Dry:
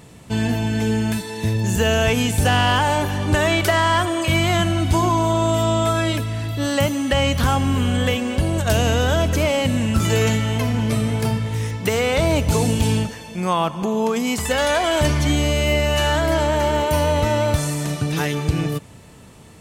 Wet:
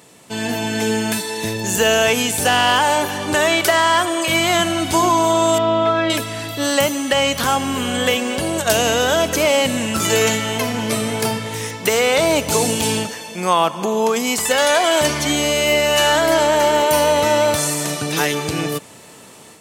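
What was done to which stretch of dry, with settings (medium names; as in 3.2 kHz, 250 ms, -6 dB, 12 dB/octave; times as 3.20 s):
5.58–6.10 s: distance through air 280 m
whole clip: high-pass 130 Hz 12 dB/octave; tone controls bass -10 dB, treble +4 dB; level rider gain up to 6 dB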